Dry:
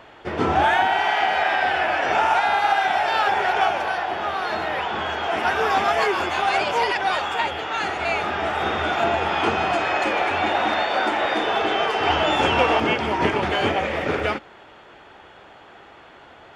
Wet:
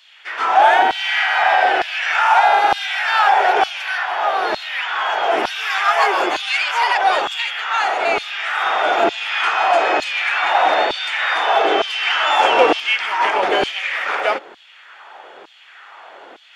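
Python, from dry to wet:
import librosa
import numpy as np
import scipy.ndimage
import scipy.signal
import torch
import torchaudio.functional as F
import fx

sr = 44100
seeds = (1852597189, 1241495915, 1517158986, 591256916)

p1 = 10.0 ** (-18.0 / 20.0) * np.tanh(x / 10.0 ** (-18.0 / 20.0))
p2 = x + (p1 * 10.0 ** (-7.0 / 20.0))
p3 = fx.filter_lfo_highpass(p2, sr, shape='saw_down', hz=1.1, low_hz=310.0, high_hz=4100.0, q=1.7)
y = p3 * 10.0 ** (1.5 / 20.0)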